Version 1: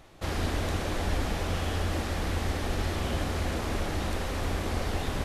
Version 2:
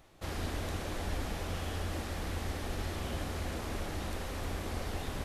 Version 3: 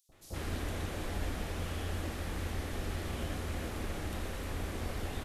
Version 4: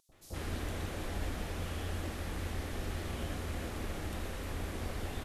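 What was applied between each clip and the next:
high shelf 11000 Hz +7 dB; gain -7 dB
three bands offset in time highs, lows, mids 90/120 ms, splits 830/4900 Hz
vibrato 5 Hz 28 cents; gain -1 dB

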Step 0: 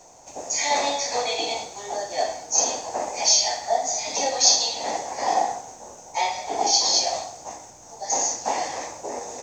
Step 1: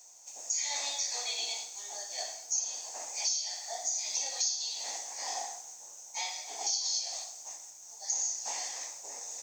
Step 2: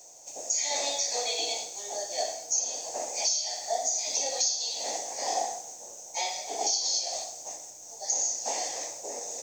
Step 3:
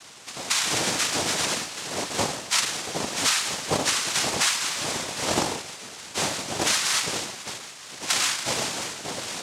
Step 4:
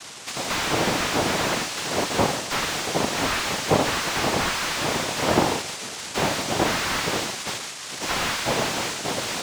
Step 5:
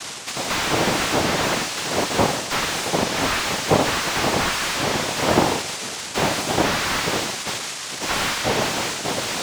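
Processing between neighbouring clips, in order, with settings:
pre-emphasis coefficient 0.97; compressor 8:1, threshold -29 dBFS, peak gain reduction 15 dB; reverb RT60 0.50 s, pre-delay 15 ms, DRR 14.5 dB
resonant low shelf 790 Hz +9.5 dB, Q 1.5; gain +4 dB
noise vocoder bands 2; gain +5 dB
slew limiter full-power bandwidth 88 Hz; gain +6.5 dB
reverse; upward compressor, threshold -27 dBFS; reverse; record warp 33 1/3 rpm, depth 160 cents; gain +2.5 dB

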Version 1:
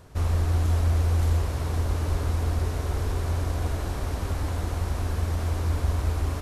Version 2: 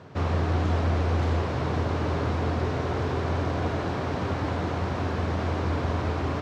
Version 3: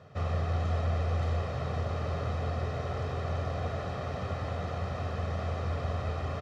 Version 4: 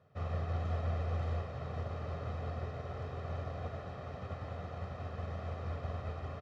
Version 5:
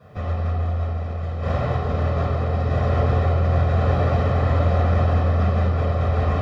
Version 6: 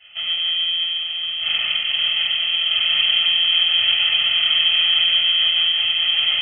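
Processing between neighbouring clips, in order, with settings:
HPF 110 Hz 24 dB/oct; air absorption 190 m; gain +7 dB
comb 1.6 ms, depth 66%; gain -8 dB
high shelf 4700 Hz -8 dB; upward expander 1.5:1, over -44 dBFS; gain -4.5 dB
negative-ratio compressor -42 dBFS, ratio -1; reverb RT60 1.5 s, pre-delay 3 ms, DRR -12 dB; gain +4.5 dB
inverted band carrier 3200 Hz

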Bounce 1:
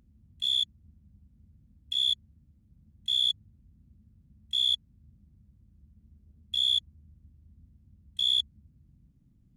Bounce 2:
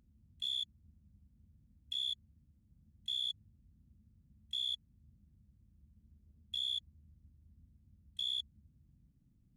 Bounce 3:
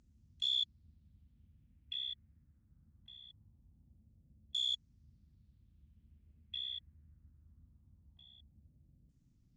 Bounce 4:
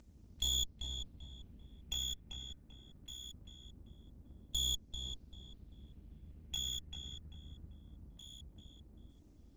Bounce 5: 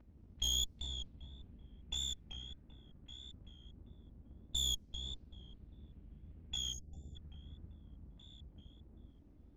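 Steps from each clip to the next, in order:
limiter -23.5 dBFS, peak gain reduction 6 dB; gain -6.5 dB
bell 200 Hz -4 dB 0.22 oct; LFO low-pass saw down 0.22 Hz 520–7200 Hz
minimum comb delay 3.3 ms; compressor 1.5:1, threshold -53 dBFS, peak gain reduction 7 dB; darkening echo 0.391 s, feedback 36%, low-pass 2300 Hz, level -4 dB; gain +9 dB
vibrato 1.6 Hz 69 cents; spectral gain 6.73–7.16, 800–4500 Hz -28 dB; low-pass opened by the level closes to 2000 Hz, open at -33.5 dBFS

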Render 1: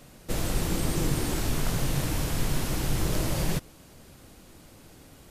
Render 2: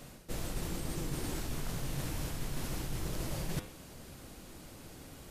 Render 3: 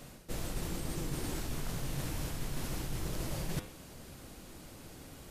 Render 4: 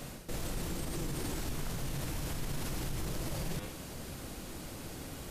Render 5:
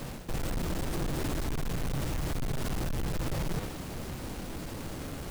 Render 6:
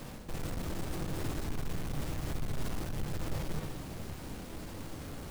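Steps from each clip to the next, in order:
de-hum 102.7 Hz, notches 37; reverse; compressor 5:1, threshold -35 dBFS, peak gain reduction 13.5 dB; reverse; gain +1 dB
nothing audible
limiter -34.5 dBFS, peak gain reduction 11.5 dB; gain +6.5 dB
half-waves squared off
reverb RT60 1.1 s, pre-delay 10 ms, DRR 8 dB; gain -5.5 dB

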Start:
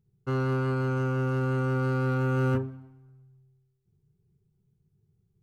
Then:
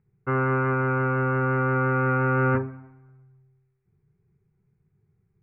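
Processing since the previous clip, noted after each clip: steep low-pass 2400 Hz 72 dB/oct; tilt shelf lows -5.5 dB, about 670 Hz; gain +6.5 dB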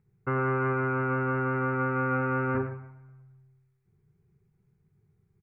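limiter -20 dBFS, peak gain reduction 7 dB; echo 0.112 s -10.5 dB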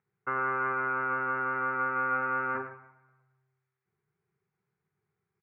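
band-pass 1400 Hz, Q 0.98; gain +2 dB

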